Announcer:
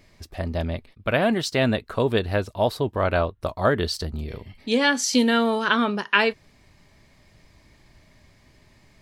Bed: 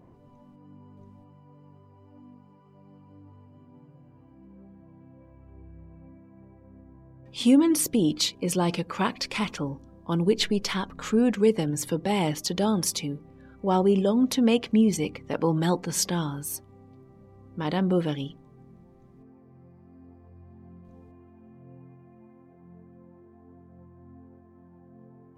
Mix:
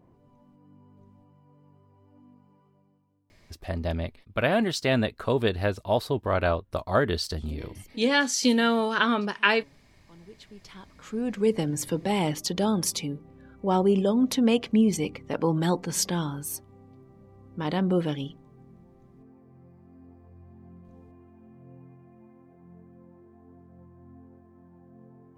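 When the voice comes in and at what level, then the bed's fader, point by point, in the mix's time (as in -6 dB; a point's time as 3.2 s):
3.30 s, -2.5 dB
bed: 2.63 s -5 dB
3.34 s -26.5 dB
10.37 s -26.5 dB
11.56 s -0.5 dB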